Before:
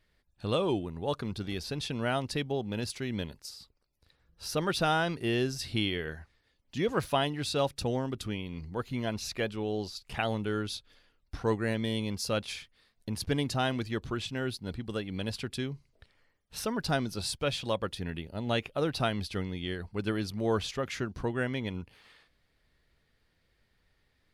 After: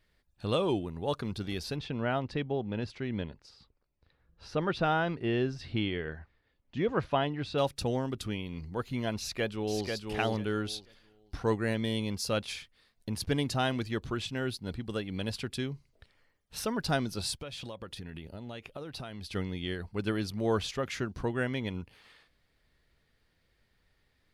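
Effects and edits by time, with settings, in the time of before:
0:01.76–0:07.58: Bessel low-pass filter 2,300 Hz
0:09.18–0:09.87: delay throw 490 ms, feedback 20%, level −4 dB
0:17.34–0:19.35: downward compressor 10 to 1, threshold −37 dBFS

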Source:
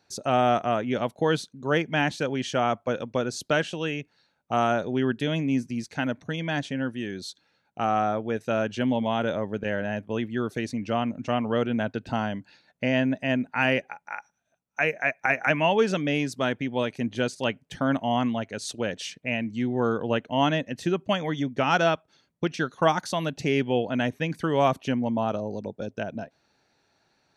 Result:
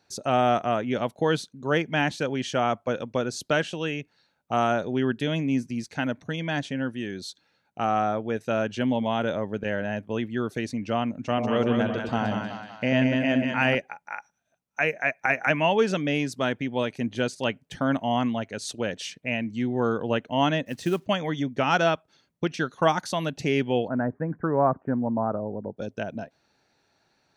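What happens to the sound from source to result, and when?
0:11.21–0:13.75: echo with a time of its own for lows and highs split 710 Hz, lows 93 ms, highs 188 ms, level −3.5 dB
0:20.66–0:21.06: log-companded quantiser 6 bits
0:23.88–0:25.77: Butterworth low-pass 1,600 Hz 48 dB per octave

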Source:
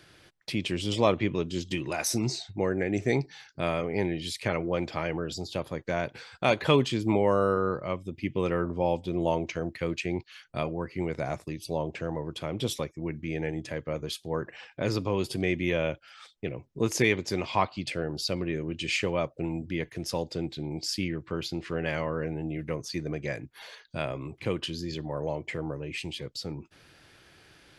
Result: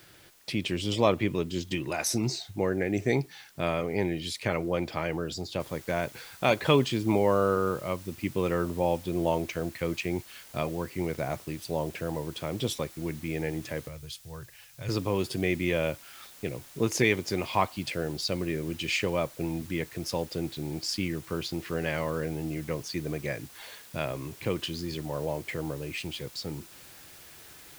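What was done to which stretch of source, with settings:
0:05.60: noise floor change −60 dB −51 dB
0:13.88–0:14.89: drawn EQ curve 130 Hz 0 dB, 220 Hz −20 dB, 5,300 Hz −4 dB

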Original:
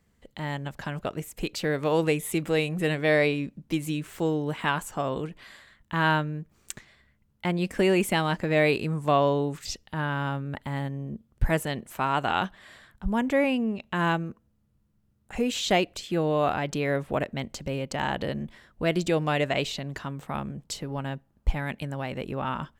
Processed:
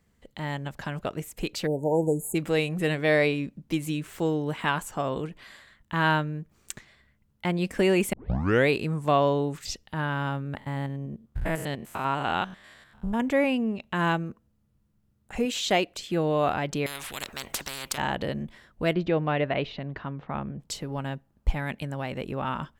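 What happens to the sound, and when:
0:01.67–0:02.35: time-frequency box erased 960–6,500 Hz
0:08.13: tape start 0.56 s
0:10.57–0:13.20: spectrum averaged block by block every 100 ms
0:15.45–0:15.99: low-shelf EQ 140 Hz −9.5 dB
0:16.86–0:17.98: every bin compressed towards the loudest bin 10 to 1
0:18.93–0:20.60: Gaussian smoothing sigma 2.6 samples

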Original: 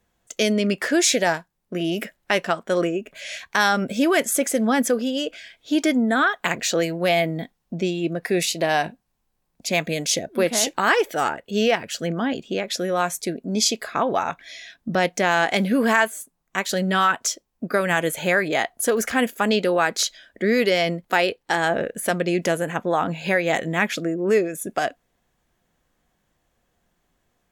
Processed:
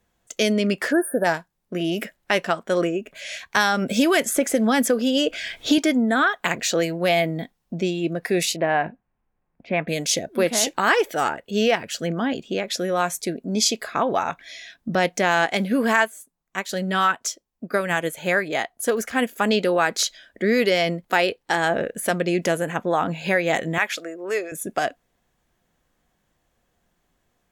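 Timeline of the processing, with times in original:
0:00.92–0:01.25: time-frequency box erased 1,800–8,700 Hz
0:03.56–0:05.78: multiband upward and downward compressor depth 100%
0:08.56–0:09.88: low-pass filter 2,300 Hz 24 dB per octave
0:15.46–0:19.31: expander for the loud parts, over −30 dBFS
0:23.78–0:24.52: high-pass filter 610 Hz

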